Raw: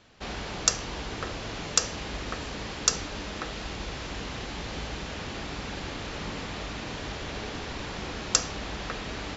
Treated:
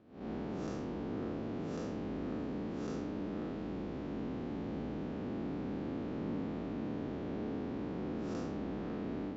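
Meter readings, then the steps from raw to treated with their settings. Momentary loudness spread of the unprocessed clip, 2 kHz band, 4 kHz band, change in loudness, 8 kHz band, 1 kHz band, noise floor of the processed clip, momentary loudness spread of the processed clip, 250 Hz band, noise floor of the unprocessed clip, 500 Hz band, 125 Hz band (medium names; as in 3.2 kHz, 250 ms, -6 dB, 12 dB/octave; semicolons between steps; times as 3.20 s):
10 LU, -17.0 dB, -25.5 dB, -7.5 dB, no reading, -10.5 dB, -41 dBFS, 1 LU, +3.0 dB, -38 dBFS, -2.5 dB, -4.5 dB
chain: spectral blur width 156 ms; band-pass filter 260 Hz, Q 1.6; trim +6 dB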